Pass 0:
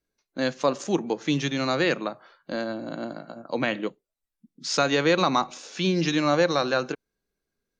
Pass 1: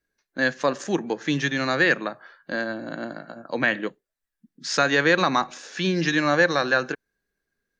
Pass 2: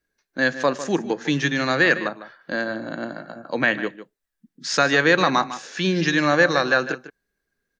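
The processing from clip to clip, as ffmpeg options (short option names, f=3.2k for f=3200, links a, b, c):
-af "equalizer=f=1.7k:t=o:w=0.35:g=12.5"
-filter_complex "[0:a]asplit=2[a][b];[b]adelay=151.6,volume=-13dB,highshelf=f=4k:g=-3.41[c];[a][c]amix=inputs=2:normalize=0,volume=2dB"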